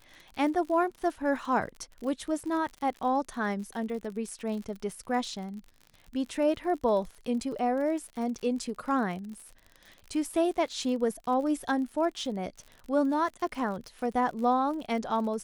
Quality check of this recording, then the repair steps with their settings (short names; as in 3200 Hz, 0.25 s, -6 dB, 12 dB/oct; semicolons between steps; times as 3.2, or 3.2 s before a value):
crackle 57/s -38 dBFS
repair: de-click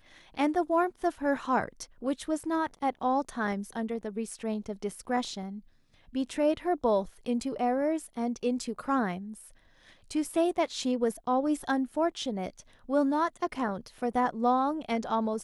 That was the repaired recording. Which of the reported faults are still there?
none